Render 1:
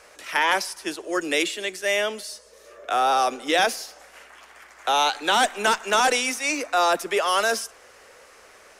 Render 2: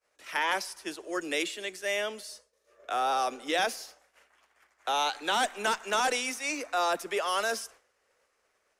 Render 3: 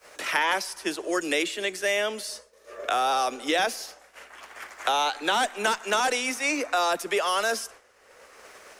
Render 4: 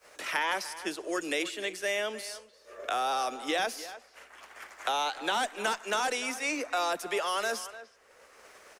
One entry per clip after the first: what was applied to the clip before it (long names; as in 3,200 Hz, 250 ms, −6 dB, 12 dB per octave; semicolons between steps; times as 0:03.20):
downward expander −39 dBFS; level −7.5 dB
multiband upward and downward compressor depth 70%; level +4 dB
far-end echo of a speakerphone 300 ms, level −14 dB; level −5.5 dB